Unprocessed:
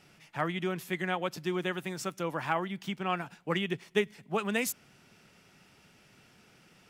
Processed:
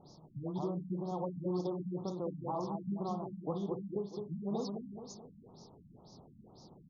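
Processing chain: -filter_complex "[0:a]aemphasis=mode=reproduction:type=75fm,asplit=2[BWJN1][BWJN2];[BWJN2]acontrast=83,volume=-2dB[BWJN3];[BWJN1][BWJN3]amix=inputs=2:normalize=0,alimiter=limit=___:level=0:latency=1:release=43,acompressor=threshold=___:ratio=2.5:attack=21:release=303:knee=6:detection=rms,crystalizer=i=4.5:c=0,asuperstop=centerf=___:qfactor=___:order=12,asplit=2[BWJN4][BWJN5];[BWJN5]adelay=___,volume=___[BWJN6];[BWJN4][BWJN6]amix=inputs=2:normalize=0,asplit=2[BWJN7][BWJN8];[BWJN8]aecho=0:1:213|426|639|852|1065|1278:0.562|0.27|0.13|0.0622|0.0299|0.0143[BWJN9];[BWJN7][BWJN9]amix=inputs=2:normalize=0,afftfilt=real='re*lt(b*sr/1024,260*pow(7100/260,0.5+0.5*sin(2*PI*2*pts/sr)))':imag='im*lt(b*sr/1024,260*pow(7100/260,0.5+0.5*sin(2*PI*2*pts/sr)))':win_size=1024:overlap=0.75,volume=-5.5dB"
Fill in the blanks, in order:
-12dB, -32dB, 2100, 0.71, 50, -9dB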